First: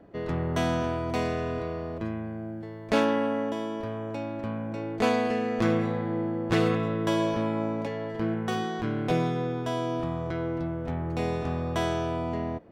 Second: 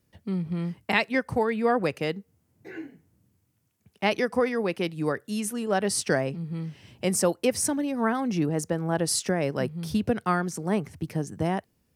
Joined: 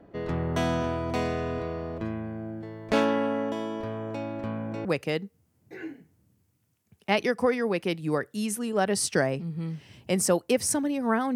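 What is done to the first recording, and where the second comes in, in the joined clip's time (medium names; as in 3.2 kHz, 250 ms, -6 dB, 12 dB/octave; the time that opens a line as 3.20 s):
first
4.85 s: go over to second from 1.79 s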